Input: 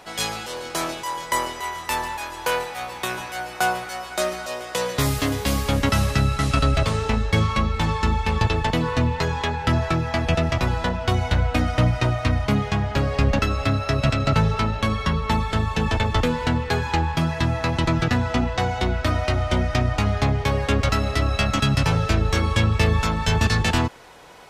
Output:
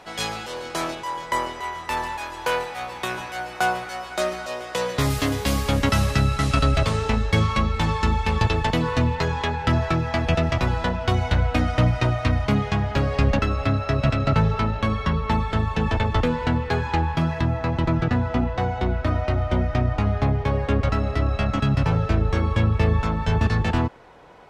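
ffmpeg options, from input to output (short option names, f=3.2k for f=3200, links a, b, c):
-af "asetnsamples=n=441:p=0,asendcmd='0.95 lowpass f 2700;1.97 lowpass f 4700;5.1 lowpass f 11000;9.15 lowpass f 5300;13.37 lowpass f 2400;17.41 lowpass f 1200',lowpass=f=4.6k:p=1"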